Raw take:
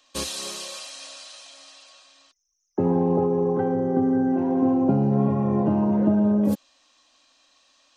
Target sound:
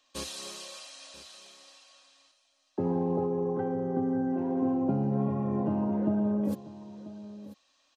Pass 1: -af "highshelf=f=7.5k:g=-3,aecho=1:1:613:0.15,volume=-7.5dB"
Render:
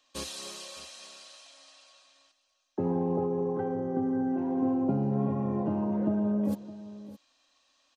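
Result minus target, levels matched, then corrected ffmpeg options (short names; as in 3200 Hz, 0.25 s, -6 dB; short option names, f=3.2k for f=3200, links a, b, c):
echo 0.376 s early
-af "highshelf=f=7.5k:g=-3,aecho=1:1:989:0.15,volume=-7.5dB"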